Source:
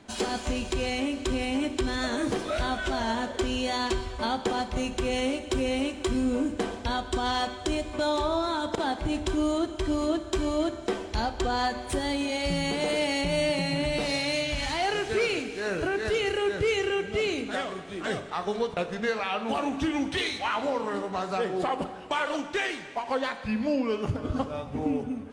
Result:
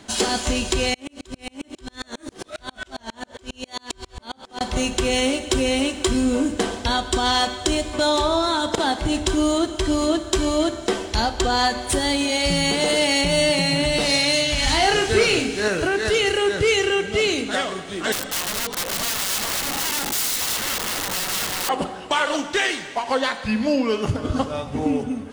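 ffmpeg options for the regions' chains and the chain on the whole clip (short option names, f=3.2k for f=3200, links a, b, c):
-filter_complex "[0:a]asettb=1/sr,asplit=3[a][b][c];[a]atrim=end=0.944[d];[b]atrim=start=0.94:end=4.61,asetpts=PTS-STARTPTS,afade=t=in:d=0.004:c=qsin,afade=t=out:st=3.666:d=0.004:c=qsin,acompressor=threshold=-29dB:ratio=5:attack=3.2:release=140:knee=1:detection=peak,aeval=exprs='val(0)*pow(10,-39*if(lt(mod(-7.4*n/s,1),2*abs(-7.4)/1000),1-mod(-7.4*n/s,1)/(2*abs(-7.4)/1000),(mod(-7.4*n/s,1)-2*abs(-7.4)/1000)/(1-2*abs(-7.4)/1000))/20)':c=same[e];[c]atrim=start=4.606[f];[d][e]acrossfade=d=0.004:c1=hsin:c2=qsin[g];[g][f]acrossfade=d=0.004:c1=qsin:c2=hsin,asettb=1/sr,asplit=3[h][i][j];[h]atrim=end=14.644[k];[i]atrim=start=14.64:end=15.68,asetpts=PTS-STARTPTS,afade=t=in:d=0.004:c=qsin,afade=t=out:st=1.036:d=0.004:c=qsin,lowshelf=f=190:g=8.5,asplit=2[l][m];[m]adelay=33,volume=-5.5dB[n];[l][n]amix=inputs=2:normalize=0,atrim=end_sample=45864[o];[j]atrim=start=15.676[p];[k][o]acrossfade=d=0.004:c1=hsin:c2=qsin[q];[q][p]acrossfade=d=0.004:c1=qsin:c2=hsin,asettb=1/sr,asplit=3[r][s][t];[r]atrim=end=18.124[u];[s]atrim=start=18.12:end=21.69,asetpts=PTS-STARTPTS,afade=t=in:d=0.004:c=qsin,afade=t=out:st=3.566:d=0.004:c=qsin,aecho=1:1:3.9:0.99,atrim=end_sample=157437,acompressor=threshold=-29dB:ratio=4:attack=3.2:release=140:knee=1:detection=peak,aeval=exprs='(mod(33.5*val(0)+1,2)-1)/33.5':c=same[v];[t]atrim=start=21.686[w];[u][v]acrossfade=d=0.004:c1=hsin:c2=qsin[x];[x][w]acrossfade=d=0.004:c1=qsin:c2=hsin,highshelf=f=2.9k:g=8.5,bandreject=f=2.4k:w=19,volume=6dB"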